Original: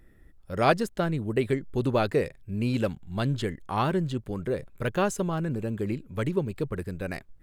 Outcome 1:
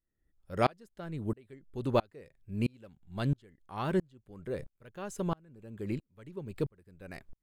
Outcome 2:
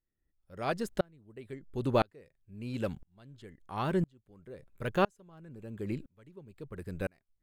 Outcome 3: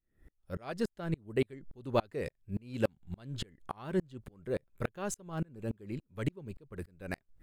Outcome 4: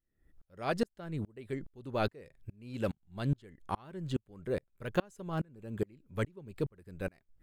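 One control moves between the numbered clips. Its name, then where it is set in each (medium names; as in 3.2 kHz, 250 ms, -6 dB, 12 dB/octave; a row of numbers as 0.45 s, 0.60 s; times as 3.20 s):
sawtooth tremolo in dB, rate: 1.5 Hz, 0.99 Hz, 3.5 Hz, 2.4 Hz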